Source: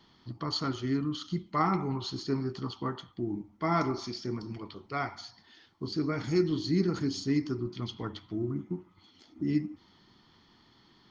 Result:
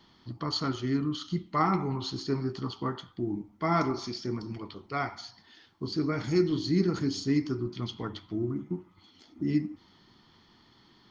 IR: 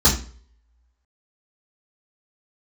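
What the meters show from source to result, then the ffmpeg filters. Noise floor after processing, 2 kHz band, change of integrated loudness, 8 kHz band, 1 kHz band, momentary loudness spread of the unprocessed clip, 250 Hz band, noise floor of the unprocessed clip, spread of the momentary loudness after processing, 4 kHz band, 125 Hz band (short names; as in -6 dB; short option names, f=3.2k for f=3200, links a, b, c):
-61 dBFS, +1.5 dB, +1.5 dB, n/a, +1.5 dB, 12 LU, +1.5 dB, -63 dBFS, 12 LU, +1.5 dB, +1.5 dB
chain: -af "flanger=delay=3.4:depth=6:regen=-89:speed=0.23:shape=sinusoidal,volume=6dB"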